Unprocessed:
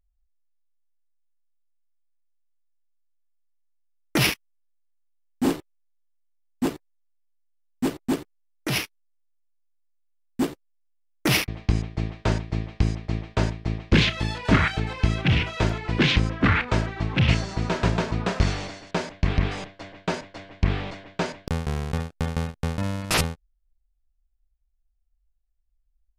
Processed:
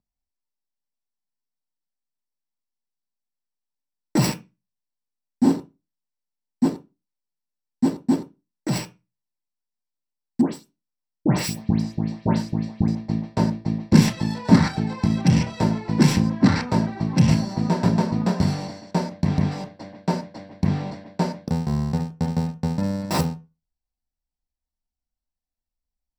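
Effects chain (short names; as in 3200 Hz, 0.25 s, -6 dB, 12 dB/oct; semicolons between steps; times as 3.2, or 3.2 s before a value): tracing distortion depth 0.37 ms; 10.41–12.88 dispersion highs, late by 0.119 s, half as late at 2100 Hz; reverb RT60 0.25 s, pre-delay 3 ms, DRR 4.5 dB; gain -8 dB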